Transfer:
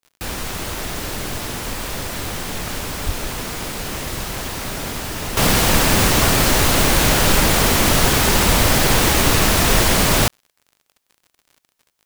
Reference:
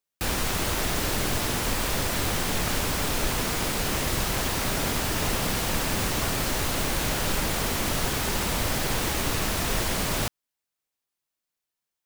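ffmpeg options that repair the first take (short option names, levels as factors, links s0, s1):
-filter_complex "[0:a]adeclick=t=4,asplit=3[s0][s1][s2];[s0]afade=t=out:st=3.05:d=0.02[s3];[s1]highpass=f=140:w=0.5412,highpass=f=140:w=1.3066,afade=t=in:st=3.05:d=0.02,afade=t=out:st=3.17:d=0.02[s4];[s2]afade=t=in:st=3.17:d=0.02[s5];[s3][s4][s5]amix=inputs=3:normalize=0,asplit=3[s6][s7][s8];[s6]afade=t=out:st=8.47:d=0.02[s9];[s7]highpass=f=140:w=0.5412,highpass=f=140:w=1.3066,afade=t=in:st=8.47:d=0.02,afade=t=out:st=8.59:d=0.02[s10];[s8]afade=t=in:st=8.59:d=0.02[s11];[s9][s10][s11]amix=inputs=3:normalize=0,asetnsamples=n=441:p=0,asendcmd='5.37 volume volume -11.5dB',volume=1"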